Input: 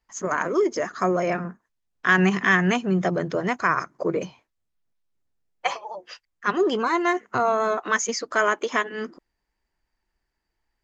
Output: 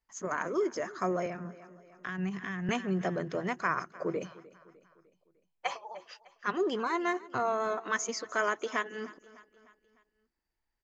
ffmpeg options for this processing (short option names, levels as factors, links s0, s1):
-filter_complex "[0:a]aecho=1:1:302|604|906|1208:0.1|0.051|0.026|0.0133,asettb=1/sr,asplit=3[s0][s1][s2];[s0]atrim=end=1.264[s3];[s1]atrim=start=1.26:end=2.69,asetpts=PTS-STARTPTS,afade=t=in:d=0.004:c=qsin,afade=t=out:st=1.426:d=0.004:c=qsin,acrossover=split=180[s4][s5];[s5]acompressor=threshold=0.0398:ratio=10[s6];[s4][s6]amix=inputs=2:normalize=0[s7];[s2]atrim=start=2.686[s8];[s3][s7]acrossfade=d=0.004:c1=hsin:c2=qsin[s9];[s9][s8]acrossfade=d=0.004:c1=qsin:c2=hsin,volume=0.376"